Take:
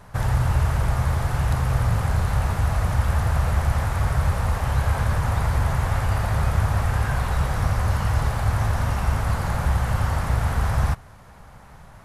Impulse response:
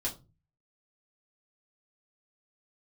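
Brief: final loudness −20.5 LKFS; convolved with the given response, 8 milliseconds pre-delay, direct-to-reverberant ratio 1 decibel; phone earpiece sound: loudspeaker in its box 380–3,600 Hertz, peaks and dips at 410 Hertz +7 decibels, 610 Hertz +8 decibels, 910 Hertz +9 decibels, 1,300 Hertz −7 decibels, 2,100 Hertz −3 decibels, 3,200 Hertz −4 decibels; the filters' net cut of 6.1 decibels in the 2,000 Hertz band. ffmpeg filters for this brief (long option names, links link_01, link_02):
-filter_complex "[0:a]equalizer=frequency=2000:width_type=o:gain=-5,asplit=2[link_01][link_02];[1:a]atrim=start_sample=2205,adelay=8[link_03];[link_02][link_03]afir=irnorm=-1:irlink=0,volume=-4dB[link_04];[link_01][link_04]amix=inputs=2:normalize=0,highpass=380,equalizer=frequency=410:width_type=q:width=4:gain=7,equalizer=frequency=610:width_type=q:width=4:gain=8,equalizer=frequency=910:width_type=q:width=4:gain=9,equalizer=frequency=1300:width_type=q:width=4:gain=-7,equalizer=frequency=2100:width_type=q:width=4:gain=-3,equalizer=frequency=3200:width_type=q:width=4:gain=-4,lowpass=frequency=3600:width=0.5412,lowpass=frequency=3600:width=1.3066,volume=5dB"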